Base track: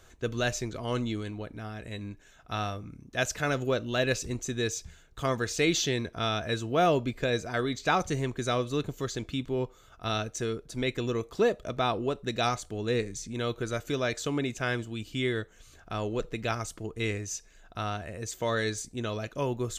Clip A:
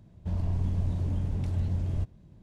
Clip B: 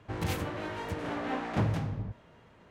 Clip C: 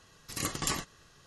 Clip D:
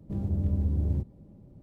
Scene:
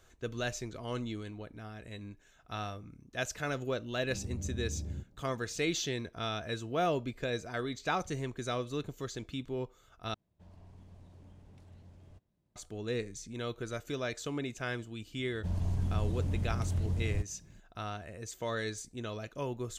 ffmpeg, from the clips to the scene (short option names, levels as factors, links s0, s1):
-filter_complex "[1:a]asplit=2[s0][s1];[0:a]volume=0.473[s2];[s0]lowshelf=f=230:g=-12[s3];[s1]aemphasis=mode=production:type=cd[s4];[s2]asplit=2[s5][s6];[s5]atrim=end=10.144[s7];[s3]atrim=end=2.42,asetpts=PTS-STARTPTS,volume=0.15[s8];[s6]atrim=start=12.556[s9];[4:a]atrim=end=1.62,asetpts=PTS-STARTPTS,volume=0.266,afade=t=in:d=0.004:c=hsin,afade=t=out:st=1.616:d=0.004:c=hsin,adelay=4000[s10];[s4]atrim=end=2.42,asetpts=PTS-STARTPTS,volume=0.708,afade=t=in:d=0.004:c=hsin,afade=t=out:st=2.416:d=0.004:c=hsin,adelay=15180[s11];[s7][s8]acrossfade=d=0.004:c1=hsin:c2=hsin[s12];[s12][s9]acrossfade=d=0.004:c1=hsin:c2=hsin[s13];[s13][s10][s11]amix=inputs=3:normalize=0"